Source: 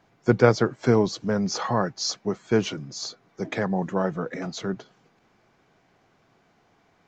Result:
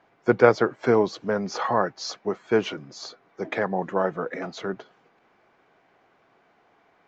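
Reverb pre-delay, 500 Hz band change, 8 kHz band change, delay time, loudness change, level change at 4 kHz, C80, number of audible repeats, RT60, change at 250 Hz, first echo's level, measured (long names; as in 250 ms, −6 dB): no reverb audible, +1.5 dB, can't be measured, no echo audible, +0.5 dB, −4.5 dB, no reverb audible, no echo audible, no reverb audible, −3.0 dB, no echo audible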